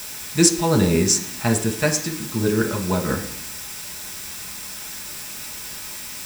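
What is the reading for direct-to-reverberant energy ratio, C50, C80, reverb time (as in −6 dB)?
2.0 dB, 11.0 dB, 13.5 dB, 0.65 s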